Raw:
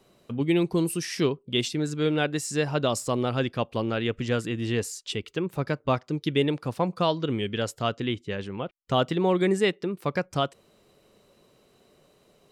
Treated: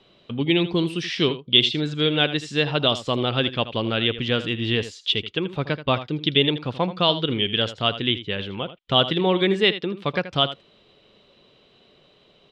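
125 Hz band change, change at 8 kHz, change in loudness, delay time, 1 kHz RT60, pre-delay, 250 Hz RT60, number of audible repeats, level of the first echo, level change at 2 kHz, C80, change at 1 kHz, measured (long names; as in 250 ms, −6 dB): +2.5 dB, can't be measured, +5.0 dB, 80 ms, no reverb audible, no reverb audible, no reverb audible, 1, −13.5 dB, +6.5 dB, no reverb audible, +3.0 dB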